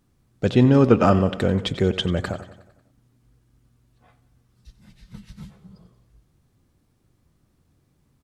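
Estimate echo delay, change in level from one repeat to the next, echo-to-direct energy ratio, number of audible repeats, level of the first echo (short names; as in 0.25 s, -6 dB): 91 ms, -4.5 dB, -13.5 dB, 5, -15.5 dB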